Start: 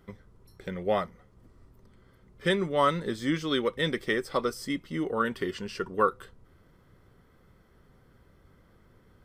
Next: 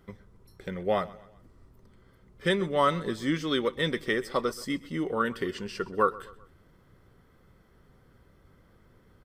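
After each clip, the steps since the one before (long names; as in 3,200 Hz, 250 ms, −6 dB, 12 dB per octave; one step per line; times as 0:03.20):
repeating echo 128 ms, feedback 44%, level −20 dB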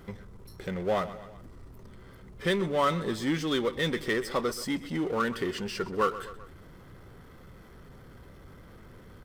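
power curve on the samples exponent 0.7
level −4.5 dB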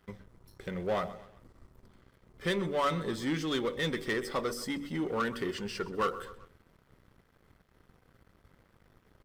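dead-zone distortion −51 dBFS
hum removal 47.71 Hz, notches 16
leveller curve on the samples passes 1
level −5.5 dB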